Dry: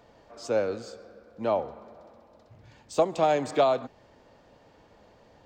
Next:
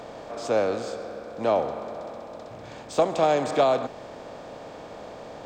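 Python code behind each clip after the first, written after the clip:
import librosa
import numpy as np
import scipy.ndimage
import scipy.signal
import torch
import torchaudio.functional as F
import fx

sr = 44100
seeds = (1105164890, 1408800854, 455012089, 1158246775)

y = fx.bin_compress(x, sr, power=0.6)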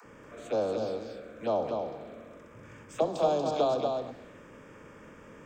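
y = fx.dispersion(x, sr, late='lows', ms=52.0, hz=310.0)
y = fx.env_phaser(y, sr, low_hz=570.0, high_hz=2000.0, full_db=-22.5)
y = y + 10.0 ** (-4.5 / 20.0) * np.pad(y, (int(236 * sr / 1000.0), 0))[:len(y)]
y = y * librosa.db_to_amplitude(-5.0)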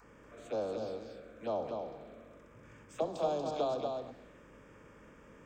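y = fx.add_hum(x, sr, base_hz=50, snr_db=28)
y = y * librosa.db_to_amplitude(-6.5)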